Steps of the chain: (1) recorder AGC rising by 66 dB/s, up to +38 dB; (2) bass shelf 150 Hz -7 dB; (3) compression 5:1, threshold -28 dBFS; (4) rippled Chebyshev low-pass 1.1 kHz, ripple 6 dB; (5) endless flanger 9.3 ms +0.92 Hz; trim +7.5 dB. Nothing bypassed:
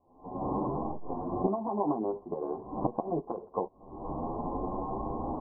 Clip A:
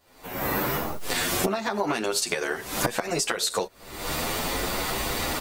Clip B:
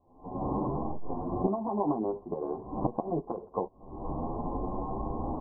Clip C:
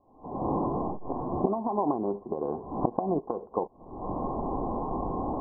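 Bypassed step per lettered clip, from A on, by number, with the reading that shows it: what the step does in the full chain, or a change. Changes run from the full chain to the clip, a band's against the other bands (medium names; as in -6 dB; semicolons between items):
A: 4, 250 Hz band -3.0 dB; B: 2, 125 Hz band +3.0 dB; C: 5, crest factor change +2.5 dB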